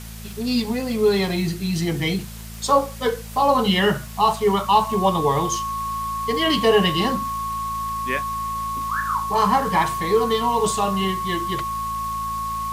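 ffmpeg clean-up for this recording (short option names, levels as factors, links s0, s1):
-af "adeclick=t=4,bandreject=f=55.2:t=h:w=4,bandreject=f=110.4:t=h:w=4,bandreject=f=165.6:t=h:w=4,bandreject=f=220.8:t=h:w=4,bandreject=f=1100:w=30,afwtdn=0.0089"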